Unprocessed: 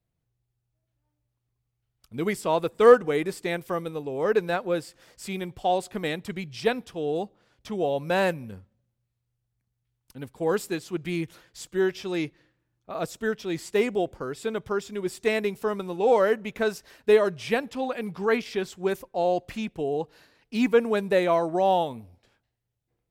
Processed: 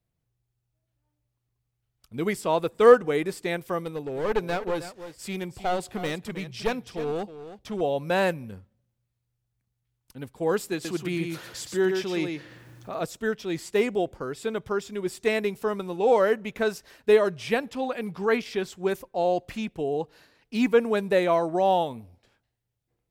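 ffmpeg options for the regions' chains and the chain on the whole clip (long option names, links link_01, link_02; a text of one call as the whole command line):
ffmpeg -i in.wav -filter_complex "[0:a]asettb=1/sr,asplit=3[link_01][link_02][link_03];[link_01]atrim=end=3.844[link_04];[link_02]atrim=start=3.84:end=7.81,asetpts=PTS-STARTPTS,afade=type=in:duration=0.004:curve=qsin,afade=type=out:start_time=3.966:duration=0.004:curve=qsin,aeval=exprs='clip(val(0),-1,0.0398)':channel_layout=same,aecho=1:1:317:0.237,atrim=end_sample=175077[link_05];[link_03]atrim=start=7.806[link_06];[link_04][link_05]acrossfade=duration=0.004:curve1=hsin:curve2=qsin[link_07];[link_07][link_06]acrossfade=duration=0.004:curve1=qsin:curve2=hsin,asettb=1/sr,asplit=3[link_08][link_09][link_10];[link_08]atrim=end=10.734[link_11];[link_09]atrim=start=10.73:end=13.01,asetpts=PTS-STARTPTS,afade=type=in:duration=0.004:curve=qsin,afade=type=out:start_time=2.276:duration=0.004:curve=qsin,highpass=92,acompressor=mode=upward:threshold=-29dB:ratio=2.5:attack=3.2:release=140:knee=2.83:detection=peak,aecho=1:1:117:0.562,atrim=end_sample=100548[link_12];[link_10]atrim=start=13.006[link_13];[link_11][link_12]acrossfade=duration=0.004:curve1=hsin:curve2=qsin[link_14];[link_14][link_13]acrossfade=duration=0.004:curve1=qsin:curve2=hsin" out.wav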